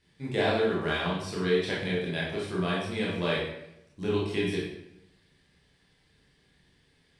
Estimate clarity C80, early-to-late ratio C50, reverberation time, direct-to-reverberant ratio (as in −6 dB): 5.0 dB, 1.0 dB, 0.85 s, −6.5 dB